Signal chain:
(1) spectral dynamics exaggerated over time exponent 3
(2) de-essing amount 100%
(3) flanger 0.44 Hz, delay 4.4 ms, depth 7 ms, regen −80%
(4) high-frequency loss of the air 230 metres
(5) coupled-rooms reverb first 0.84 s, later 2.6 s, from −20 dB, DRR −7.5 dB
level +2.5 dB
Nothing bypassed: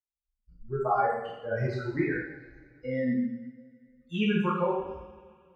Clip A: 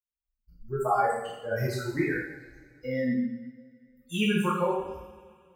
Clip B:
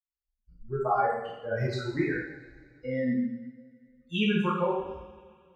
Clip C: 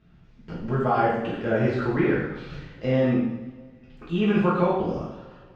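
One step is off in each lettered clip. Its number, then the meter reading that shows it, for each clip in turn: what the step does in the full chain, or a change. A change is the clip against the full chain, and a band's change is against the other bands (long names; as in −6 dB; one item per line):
4, 4 kHz band +4.0 dB
2, 4 kHz band +4.5 dB
1, 4 kHz band −4.5 dB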